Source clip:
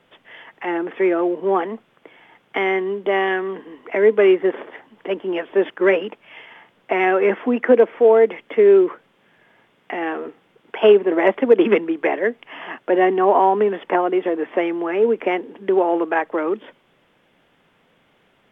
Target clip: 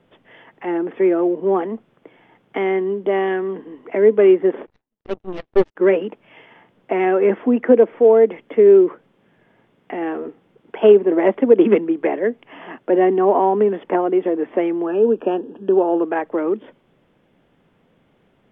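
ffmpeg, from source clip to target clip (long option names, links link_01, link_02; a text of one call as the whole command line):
ffmpeg -i in.wav -filter_complex "[0:a]asplit=3[link_01][link_02][link_03];[link_01]afade=type=out:start_time=4.65:duration=0.02[link_04];[link_02]aeval=exprs='0.501*(cos(1*acos(clip(val(0)/0.501,-1,1)))-cos(1*PI/2))+0.0708*(cos(4*acos(clip(val(0)/0.501,-1,1)))-cos(4*PI/2))+0.00708*(cos(6*acos(clip(val(0)/0.501,-1,1)))-cos(6*PI/2))+0.0708*(cos(7*acos(clip(val(0)/0.501,-1,1)))-cos(7*PI/2))':channel_layout=same,afade=type=in:start_time=4.65:duration=0.02,afade=type=out:start_time=5.75:duration=0.02[link_05];[link_03]afade=type=in:start_time=5.75:duration=0.02[link_06];[link_04][link_05][link_06]amix=inputs=3:normalize=0,asettb=1/sr,asplit=3[link_07][link_08][link_09];[link_07]atrim=end=14.864[link_10];[link_08]atrim=start=14.86:end=16.03,asetpts=PTS-STARTPTS,afade=type=in:duration=0.004:curve=qsin,afade=type=out:start_time=1.166:duration=0.004:curve=qsin,asuperstop=centerf=2100:order=8:qfactor=3.1[link_11];[link_09]atrim=start=16.026[link_12];[link_10][link_11]acrossfade=duration=0.004:curve1=hsin:curve2=qsin[link_13];[link_13][link_12]acrossfade=duration=0.004:curve1=qsin:curve2=hsin,tiltshelf=frequency=650:gain=6.5,volume=-1dB" out.wav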